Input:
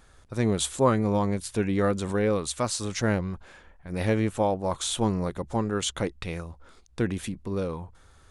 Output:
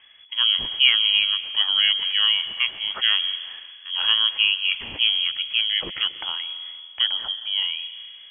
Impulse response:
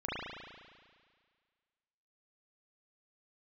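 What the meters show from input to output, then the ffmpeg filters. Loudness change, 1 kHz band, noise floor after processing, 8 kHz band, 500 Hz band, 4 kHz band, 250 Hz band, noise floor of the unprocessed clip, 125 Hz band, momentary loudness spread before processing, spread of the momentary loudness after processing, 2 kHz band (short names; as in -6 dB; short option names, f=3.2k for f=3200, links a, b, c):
+7.5 dB, -7.5 dB, -45 dBFS, under -40 dB, -22.5 dB, +21.5 dB, under -20 dB, -56 dBFS, under -25 dB, 12 LU, 13 LU, +11.5 dB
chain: -filter_complex "[0:a]asplit=2[a][b];[1:a]atrim=start_sample=2205,lowshelf=f=160:g=9.5,adelay=129[c];[b][c]afir=irnorm=-1:irlink=0,volume=-20.5dB[d];[a][d]amix=inputs=2:normalize=0,lowpass=f=2.9k:t=q:w=0.5098,lowpass=f=2.9k:t=q:w=0.6013,lowpass=f=2.9k:t=q:w=0.9,lowpass=f=2.9k:t=q:w=2.563,afreqshift=-3400,volume=4dB"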